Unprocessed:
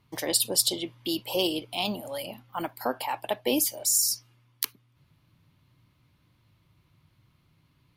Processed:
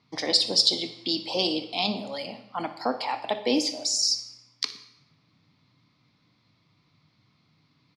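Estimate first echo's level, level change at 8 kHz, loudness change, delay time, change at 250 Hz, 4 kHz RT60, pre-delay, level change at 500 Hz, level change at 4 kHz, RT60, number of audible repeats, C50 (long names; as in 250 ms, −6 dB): −16.0 dB, −5.5 dB, +1.5 dB, 60 ms, +2.0 dB, 0.75 s, 16 ms, +0.5 dB, +6.0 dB, 0.95 s, 1, 11.0 dB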